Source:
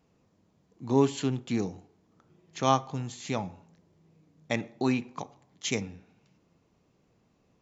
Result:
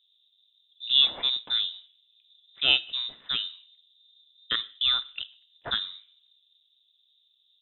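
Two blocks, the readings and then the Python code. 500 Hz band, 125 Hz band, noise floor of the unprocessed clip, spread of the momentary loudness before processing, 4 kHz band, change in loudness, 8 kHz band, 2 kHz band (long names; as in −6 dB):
−17.0 dB, below −20 dB, −69 dBFS, 17 LU, +19.0 dB, +5.0 dB, can't be measured, +6.0 dB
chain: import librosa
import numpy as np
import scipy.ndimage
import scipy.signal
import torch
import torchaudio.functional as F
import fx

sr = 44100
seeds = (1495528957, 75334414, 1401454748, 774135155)

y = fx.env_lowpass(x, sr, base_hz=490.0, full_db=-26.0)
y = fx.freq_invert(y, sr, carrier_hz=3800)
y = y * 10.0 ** (1.5 / 20.0)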